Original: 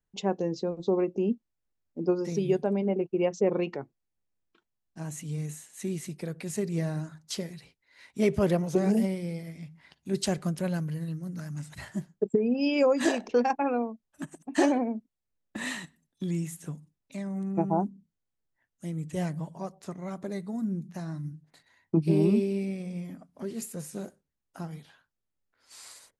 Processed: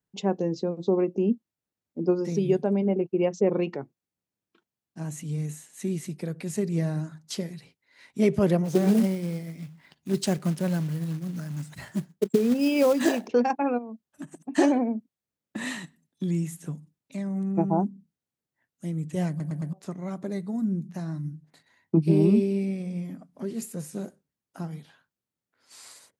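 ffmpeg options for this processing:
ffmpeg -i in.wav -filter_complex "[0:a]asplit=3[link_01][link_02][link_03];[link_01]afade=type=out:start_time=8.64:duration=0.02[link_04];[link_02]acrusher=bits=4:mode=log:mix=0:aa=0.000001,afade=type=in:start_time=8.64:duration=0.02,afade=type=out:start_time=13.26:duration=0.02[link_05];[link_03]afade=type=in:start_time=13.26:duration=0.02[link_06];[link_04][link_05][link_06]amix=inputs=3:normalize=0,asplit=3[link_07][link_08][link_09];[link_07]afade=type=out:start_time=13.77:duration=0.02[link_10];[link_08]acompressor=threshold=-36dB:ratio=6:attack=3.2:release=140:knee=1:detection=peak,afade=type=in:start_time=13.77:duration=0.02,afade=type=out:start_time=14.4:duration=0.02[link_11];[link_09]afade=type=in:start_time=14.4:duration=0.02[link_12];[link_10][link_11][link_12]amix=inputs=3:normalize=0,asplit=5[link_13][link_14][link_15][link_16][link_17];[link_13]atrim=end=19.402[link_18];[link_14]atrim=start=19.288:end=19.402[link_19];[link_15]atrim=start=19.288:end=19.402[link_20];[link_16]atrim=start=19.288:end=19.402[link_21];[link_17]atrim=start=19.728[link_22];[link_18][link_19]acrossfade=duration=0.004:curve1=hsin:curve2=hsin[link_23];[link_23][link_20]acrossfade=duration=0.004:curve1=hsin:curve2=hsin[link_24];[link_24][link_21]acrossfade=duration=0.004:curve1=hsin:curve2=hsin[link_25];[link_25][link_22]acrossfade=duration=0.004:curve1=hsin:curve2=hsin,highpass=160,lowshelf=frequency=210:gain=10.5" out.wav

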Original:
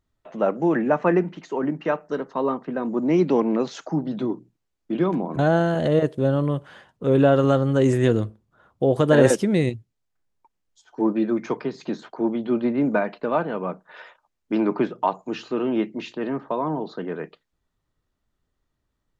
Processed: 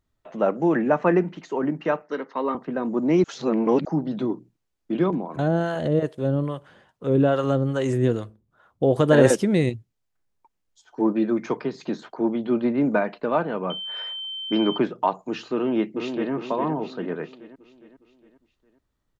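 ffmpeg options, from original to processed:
ffmpeg -i in.wav -filter_complex "[0:a]asettb=1/sr,asplit=3[link_01][link_02][link_03];[link_01]atrim=end=2.024[link_04];[link_02]atrim=start=2.02:end=2.55,asetpts=PTS-STARTPTS,afade=type=in:duration=0.004:curve=qsin,afade=type=out:start_time=0.526:duration=0.004:curve=qsin,highpass=frequency=200:width=0.5412,highpass=frequency=200:width=1.3066,equalizer=frequency=200:width_type=q:width=4:gain=-8,equalizer=frequency=370:width_type=q:width=4:gain=-5,equalizer=frequency=670:width_type=q:width=4:gain=-5,equalizer=frequency=2100:width_type=q:width=4:gain=9,lowpass=frequency=5800:width=0.5412,lowpass=frequency=5800:width=1.3066[link_05];[link_03]atrim=start=2.546[link_06];[link_04][link_05]acrossfade=duration=0.004:curve1=hsin:curve2=qsin[link_07];[link_07][link_06]acrossfade=duration=0.004:curve1=qsin:curve2=hsin,asettb=1/sr,asplit=3[link_08][link_09][link_10];[link_08]atrim=end=5.104[link_11];[link_09]atrim=start=5.1:end=8.83,asetpts=PTS-STARTPTS,afade=type=in:duration=0.004:curve=qsin,afade=type=out:start_time=3.726:duration=0.004:curve=qsin,acrossover=split=540[link_12][link_13];[link_12]aeval=exprs='val(0)*(1-0.7/2+0.7/2*cos(2*PI*2.4*n/s))':channel_layout=same[link_14];[link_13]aeval=exprs='val(0)*(1-0.7/2-0.7/2*cos(2*PI*2.4*n/s))':channel_layout=same[link_15];[link_14][link_15]amix=inputs=2:normalize=0[link_16];[link_10]atrim=start=8.826[link_17];[link_11][link_16]acrossfade=duration=0.004:curve1=hsin:curve2=qsin[link_18];[link_18][link_17]acrossfade=duration=0.004:curve1=qsin:curve2=hsin,asettb=1/sr,asplit=3[link_19][link_20][link_21];[link_19]atrim=end=13.704[link_22];[link_20]atrim=start=13.7:end=14.78,asetpts=PTS-STARTPTS,afade=type=in:duration=0.004:curve=qsin,afade=type=out:start_time=1.076:duration=0.004:curve=qsin,aeval=exprs='val(0)+0.0316*sin(2*PI*3100*n/s)':channel_layout=same[link_23];[link_21]atrim=start=14.776[link_24];[link_22][link_23]acrossfade=duration=0.004:curve1=hsin:curve2=qsin[link_25];[link_25][link_24]acrossfade=duration=0.004:curve1=qsin:curve2=hsin,asplit=2[link_26][link_27];[link_27]afade=type=in:start_time=15.55:duration=0.01,afade=type=out:start_time=16.32:duration=0.01,aecho=0:1:410|820|1230|1640|2050|2460:0.473151|0.236576|0.118288|0.0591439|0.029572|0.014786[link_28];[link_26][link_28]amix=inputs=2:normalize=0,asplit=3[link_29][link_30][link_31];[link_29]atrim=end=3.242[link_32];[link_30]atrim=start=3.238:end=3.852,asetpts=PTS-STARTPTS,areverse[link_33];[link_31]atrim=start=3.848[link_34];[link_32][link_33]acrossfade=duration=0.004:curve1=hsin:curve2=hsin[link_35];[link_35][link_34]acrossfade=duration=0.004:curve1=hsin:curve2=hsin" out.wav

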